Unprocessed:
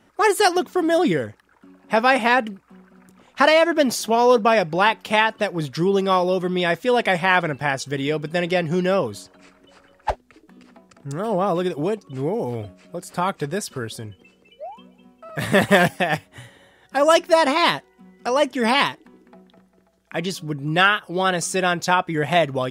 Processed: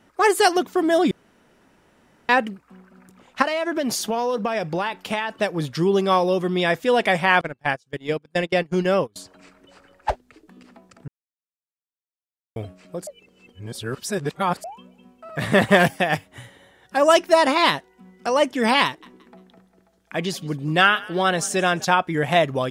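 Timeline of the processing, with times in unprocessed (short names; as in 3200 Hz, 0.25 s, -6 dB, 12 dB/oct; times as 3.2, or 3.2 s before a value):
1.11–2.29 room tone
3.42–5.4 compressor 12:1, threshold -19 dBFS
7.41–9.16 gate -23 dBFS, range -30 dB
11.08–12.56 mute
13.07–14.64 reverse
15.36–15.8 high shelf 8700 Hz -9 dB
18.85–21.85 frequency-shifting echo 0.174 s, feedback 36%, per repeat +50 Hz, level -21.5 dB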